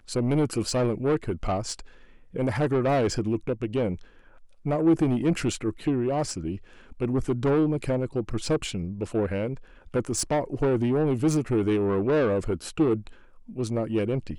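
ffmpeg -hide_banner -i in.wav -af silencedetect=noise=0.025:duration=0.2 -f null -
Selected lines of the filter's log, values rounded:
silence_start: 1.79
silence_end: 2.36 | silence_duration: 0.57
silence_start: 3.96
silence_end: 4.66 | silence_duration: 0.70
silence_start: 6.56
silence_end: 6.92 | silence_duration: 0.36
silence_start: 9.55
silence_end: 9.94 | silence_duration: 0.39
silence_start: 13.07
silence_end: 13.57 | silence_duration: 0.50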